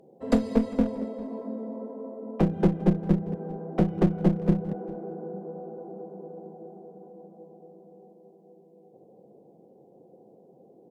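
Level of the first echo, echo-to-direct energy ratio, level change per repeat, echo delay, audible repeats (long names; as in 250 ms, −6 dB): −21.5 dB, −21.5 dB, repeats not evenly spaced, 399 ms, 1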